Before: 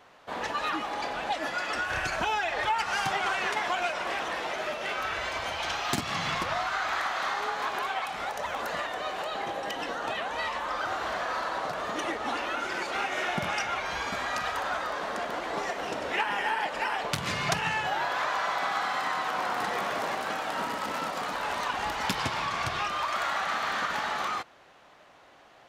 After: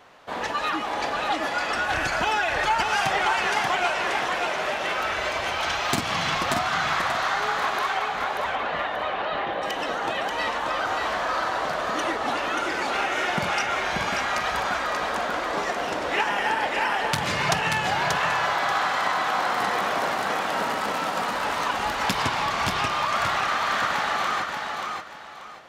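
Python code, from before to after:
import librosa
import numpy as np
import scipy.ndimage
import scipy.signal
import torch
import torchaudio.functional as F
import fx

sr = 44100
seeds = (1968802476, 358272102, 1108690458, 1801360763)

y = fx.lowpass(x, sr, hz=3600.0, slope=24, at=(7.97, 9.62))
y = fx.echo_feedback(y, sr, ms=584, feedback_pct=27, wet_db=-4)
y = F.gain(torch.from_numpy(y), 4.0).numpy()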